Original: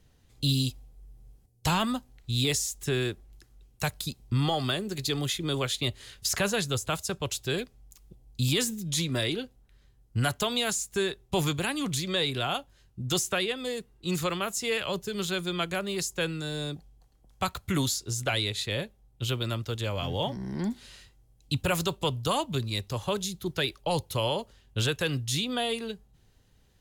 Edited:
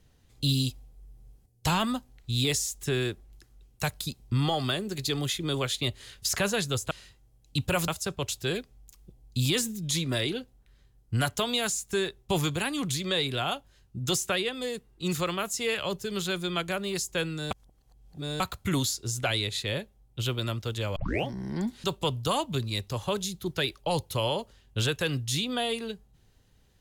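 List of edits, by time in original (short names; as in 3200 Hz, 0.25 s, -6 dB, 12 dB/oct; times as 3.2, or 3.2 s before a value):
16.54–17.43 reverse
19.99 tape start 0.30 s
20.87–21.84 move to 6.91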